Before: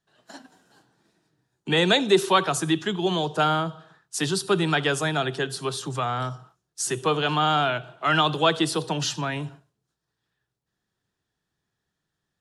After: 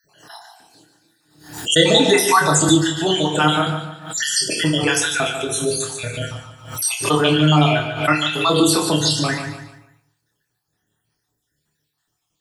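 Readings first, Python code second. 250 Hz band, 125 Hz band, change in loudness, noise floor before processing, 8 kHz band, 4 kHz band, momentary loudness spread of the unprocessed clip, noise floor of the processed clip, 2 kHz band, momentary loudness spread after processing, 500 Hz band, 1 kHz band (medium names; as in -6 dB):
+8.0 dB, +8.0 dB, +6.5 dB, -82 dBFS, +12.0 dB, +7.5 dB, 11 LU, -75 dBFS, +6.0 dB, 14 LU, +5.0 dB, +3.5 dB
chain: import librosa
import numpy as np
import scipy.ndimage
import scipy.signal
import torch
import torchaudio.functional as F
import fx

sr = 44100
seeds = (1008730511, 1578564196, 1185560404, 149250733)

p1 = fx.spec_dropout(x, sr, seeds[0], share_pct=66)
p2 = fx.high_shelf(p1, sr, hz=5300.0, db=11.5)
p3 = fx.transient(p2, sr, attack_db=-1, sustain_db=3)
p4 = fx.doubler(p3, sr, ms=27.0, db=-5.0)
p5 = p4 + fx.echo_feedback(p4, sr, ms=146, feedback_pct=37, wet_db=-9.0, dry=0)
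p6 = fx.rev_fdn(p5, sr, rt60_s=0.6, lf_ratio=0.95, hf_ratio=0.7, size_ms=20.0, drr_db=2.5)
p7 = fx.pre_swell(p6, sr, db_per_s=98.0)
y = F.gain(torch.from_numpy(p7), 5.5).numpy()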